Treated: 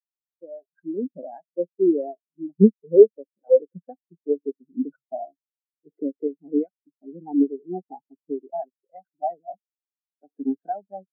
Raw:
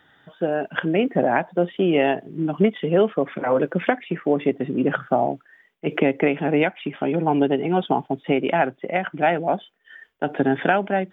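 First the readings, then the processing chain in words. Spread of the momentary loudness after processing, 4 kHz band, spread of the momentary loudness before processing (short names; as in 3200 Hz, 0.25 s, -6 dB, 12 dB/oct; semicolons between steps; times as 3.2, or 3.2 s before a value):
22 LU, n/a, 6 LU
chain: switching dead time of 0.11 ms; spectral expander 4:1; gain +1 dB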